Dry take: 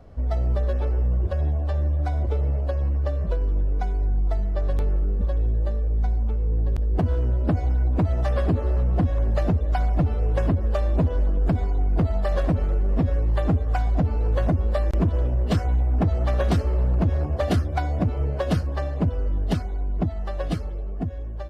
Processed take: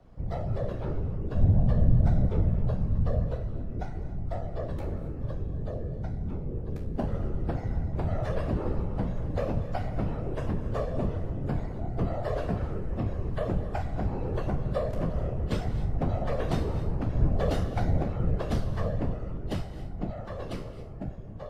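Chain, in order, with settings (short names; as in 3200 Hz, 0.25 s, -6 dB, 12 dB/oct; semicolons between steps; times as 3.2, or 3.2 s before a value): resonator 73 Hz, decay 0.4 s, harmonics all, mix 90%; whisperiser; frequency shift -26 Hz; non-linear reverb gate 0.3 s rising, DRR 12 dB; gain +2.5 dB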